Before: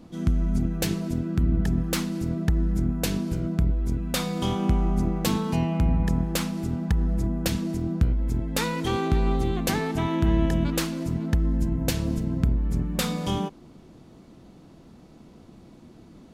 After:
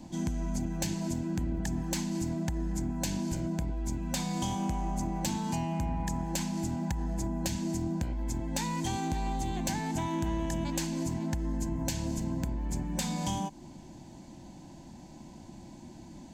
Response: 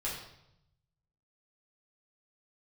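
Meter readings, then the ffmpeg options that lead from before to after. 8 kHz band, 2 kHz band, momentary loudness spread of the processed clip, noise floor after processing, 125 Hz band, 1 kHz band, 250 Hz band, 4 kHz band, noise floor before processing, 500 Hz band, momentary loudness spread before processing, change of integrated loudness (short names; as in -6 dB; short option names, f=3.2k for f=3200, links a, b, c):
-1.0 dB, -7.5 dB, 17 LU, -49 dBFS, -8.5 dB, -3.0 dB, -6.0 dB, -6.5 dB, -50 dBFS, -9.0 dB, 4 LU, -7.0 dB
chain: -filter_complex "[0:a]superequalizer=7b=0.316:9b=1.78:10b=0.316:14b=1.58:15b=2.82,acrossover=split=300|6200[a][b][c];[a]acompressor=threshold=-33dB:ratio=4[d];[b]acompressor=threshold=-36dB:ratio=4[e];[c]acompressor=threshold=-40dB:ratio=4[f];[d][e][f]amix=inputs=3:normalize=0,asoftclip=type=tanh:threshold=-22dB,volume=1dB"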